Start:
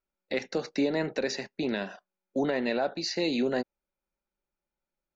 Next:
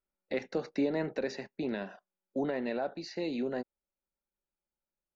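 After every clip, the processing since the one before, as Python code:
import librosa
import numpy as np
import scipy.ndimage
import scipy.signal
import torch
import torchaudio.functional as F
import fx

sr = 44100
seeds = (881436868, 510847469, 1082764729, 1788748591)

y = fx.rider(x, sr, range_db=10, speed_s=2.0)
y = fx.high_shelf(y, sr, hz=3100.0, db=-11.5)
y = y * librosa.db_to_amplitude(-4.5)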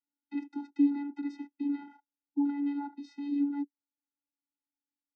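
y = fx.vocoder(x, sr, bands=16, carrier='square', carrier_hz=285.0)
y = y * librosa.db_to_amplitude(3.0)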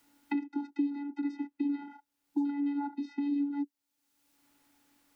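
y = fx.band_squash(x, sr, depth_pct=100)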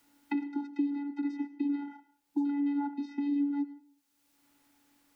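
y = fx.rev_plate(x, sr, seeds[0], rt60_s=0.52, hf_ratio=0.95, predelay_ms=75, drr_db=15.0)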